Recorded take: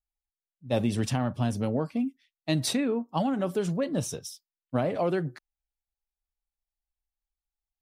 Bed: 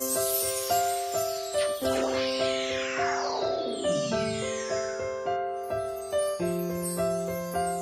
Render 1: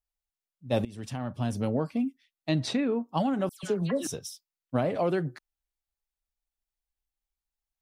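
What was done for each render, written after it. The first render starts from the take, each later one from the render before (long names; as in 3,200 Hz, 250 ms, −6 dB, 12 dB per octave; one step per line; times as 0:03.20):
0:00.85–0:01.68: fade in, from −21 dB
0:02.49–0:02.92: high-frequency loss of the air 110 metres
0:03.49–0:04.07: all-pass dispersion lows, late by 141 ms, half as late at 2,000 Hz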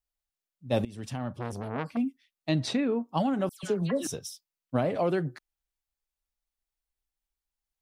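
0:01.35–0:01.97: saturating transformer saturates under 1,100 Hz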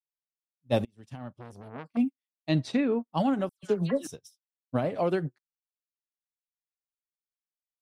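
in parallel at 0 dB: brickwall limiter −24.5 dBFS, peak gain reduction 10.5 dB
on the sum: expander for the loud parts 2.5 to 1, over −45 dBFS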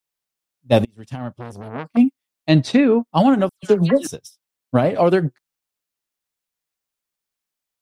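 level +11.5 dB
brickwall limiter −2 dBFS, peak gain reduction 1 dB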